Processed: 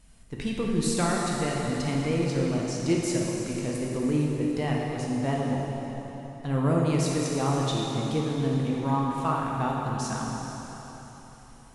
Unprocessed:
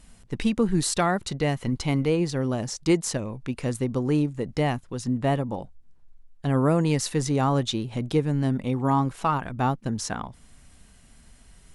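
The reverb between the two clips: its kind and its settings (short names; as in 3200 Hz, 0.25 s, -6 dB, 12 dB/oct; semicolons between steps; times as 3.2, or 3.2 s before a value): plate-style reverb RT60 3.9 s, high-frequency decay 0.95×, DRR -3 dB; gain -6.5 dB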